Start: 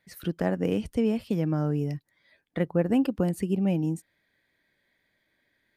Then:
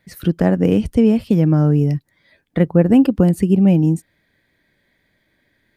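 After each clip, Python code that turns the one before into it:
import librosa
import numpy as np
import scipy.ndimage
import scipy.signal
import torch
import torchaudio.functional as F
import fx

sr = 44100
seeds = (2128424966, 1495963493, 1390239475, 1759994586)

y = fx.low_shelf(x, sr, hz=320.0, db=8.0)
y = y * 10.0 ** (7.0 / 20.0)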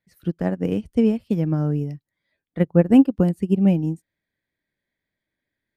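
y = fx.upward_expand(x, sr, threshold_db=-21.0, expansion=2.5)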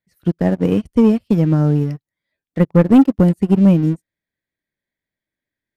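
y = fx.leveller(x, sr, passes=2)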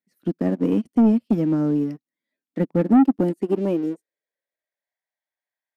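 y = fx.filter_sweep_highpass(x, sr, from_hz=250.0, to_hz=760.0, start_s=3.0, end_s=5.02, q=3.3)
y = 10.0 ** (-3.0 / 20.0) * np.tanh(y / 10.0 ** (-3.0 / 20.0))
y = y * 10.0 ** (-7.5 / 20.0)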